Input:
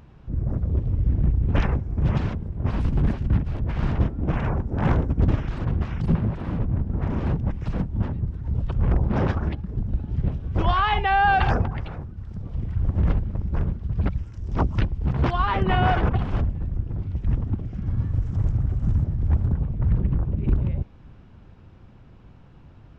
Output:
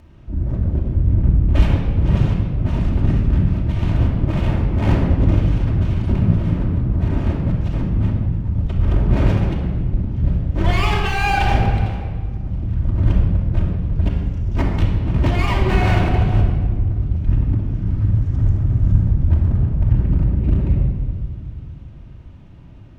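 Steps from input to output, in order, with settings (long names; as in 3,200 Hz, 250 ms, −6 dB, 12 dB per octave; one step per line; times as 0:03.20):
lower of the sound and its delayed copy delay 0.31 ms
convolution reverb RT60 1.8 s, pre-delay 3 ms, DRR −2 dB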